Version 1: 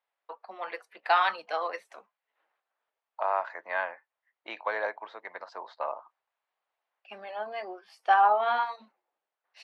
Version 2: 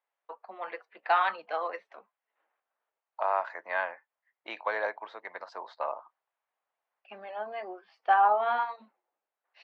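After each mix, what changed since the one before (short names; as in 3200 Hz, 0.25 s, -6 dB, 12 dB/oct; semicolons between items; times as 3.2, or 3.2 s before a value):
first voice: add air absorption 270 m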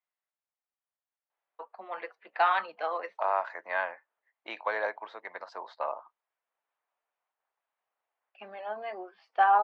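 first voice: entry +1.30 s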